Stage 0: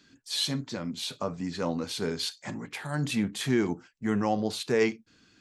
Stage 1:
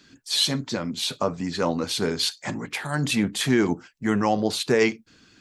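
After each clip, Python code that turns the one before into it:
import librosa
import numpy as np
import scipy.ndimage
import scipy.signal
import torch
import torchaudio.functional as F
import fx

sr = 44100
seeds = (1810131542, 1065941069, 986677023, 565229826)

y = fx.hpss(x, sr, part='percussive', gain_db=5)
y = y * librosa.db_to_amplitude(3.5)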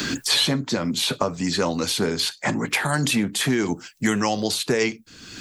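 y = fx.high_shelf(x, sr, hz=9100.0, db=10.0)
y = fx.band_squash(y, sr, depth_pct=100)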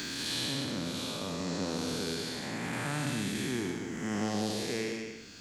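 y = fx.spec_blur(x, sr, span_ms=324.0)
y = y + 10.0 ** (-6.5 / 20.0) * np.pad(y, (int(188 * sr / 1000.0), 0))[:len(y)]
y = y * librosa.db_to_amplitude(-7.5)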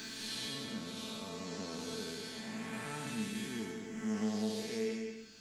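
y = fx.comb_fb(x, sr, f0_hz=220.0, decay_s=0.16, harmonics='all', damping=0.0, mix_pct=90)
y = y * librosa.db_to_amplitude(2.5)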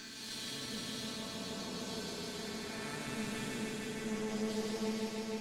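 y = fx.tube_stage(x, sr, drive_db=34.0, bias=0.75)
y = fx.echo_heads(y, sr, ms=154, heads='all three', feedback_pct=68, wet_db=-6.5)
y = y * librosa.db_to_amplitude(1.0)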